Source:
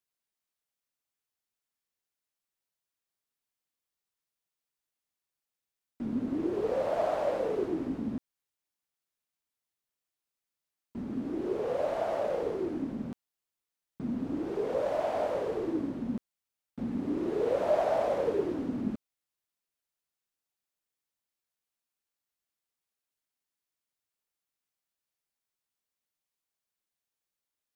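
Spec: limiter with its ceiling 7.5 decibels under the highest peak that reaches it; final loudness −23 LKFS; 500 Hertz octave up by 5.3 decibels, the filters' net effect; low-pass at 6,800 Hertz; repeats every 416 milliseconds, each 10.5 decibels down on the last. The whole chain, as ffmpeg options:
ffmpeg -i in.wav -af "lowpass=6800,equalizer=frequency=500:width_type=o:gain=6.5,alimiter=limit=-19dB:level=0:latency=1,aecho=1:1:416|832|1248:0.299|0.0896|0.0269,volume=6dB" out.wav

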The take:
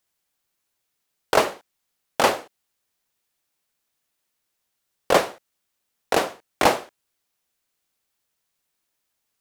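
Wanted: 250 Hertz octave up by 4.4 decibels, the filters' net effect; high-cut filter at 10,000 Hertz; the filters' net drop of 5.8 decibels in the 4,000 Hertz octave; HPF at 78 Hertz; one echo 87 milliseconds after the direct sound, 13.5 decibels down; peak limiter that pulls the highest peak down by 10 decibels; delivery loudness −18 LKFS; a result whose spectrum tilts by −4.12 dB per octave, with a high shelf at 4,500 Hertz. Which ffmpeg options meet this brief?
ffmpeg -i in.wav -af "highpass=78,lowpass=10000,equalizer=frequency=250:width_type=o:gain=6,equalizer=frequency=4000:width_type=o:gain=-6,highshelf=frequency=4500:gain=-3.5,alimiter=limit=-12.5dB:level=0:latency=1,aecho=1:1:87:0.211,volume=10dB" out.wav

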